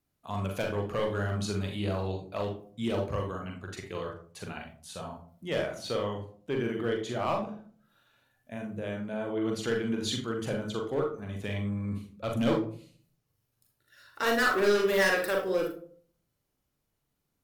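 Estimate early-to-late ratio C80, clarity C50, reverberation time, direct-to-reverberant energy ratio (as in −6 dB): 12.0 dB, 7.0 dB, 0.50 s, 1.5 dB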